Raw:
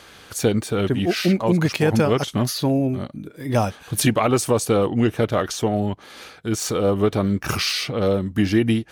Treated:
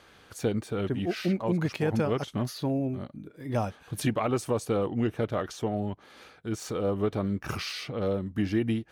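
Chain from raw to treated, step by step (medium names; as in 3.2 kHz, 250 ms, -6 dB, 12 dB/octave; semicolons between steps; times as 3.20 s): treble shelf 3.3 kHz -7.5 dB; trim -8.5 dB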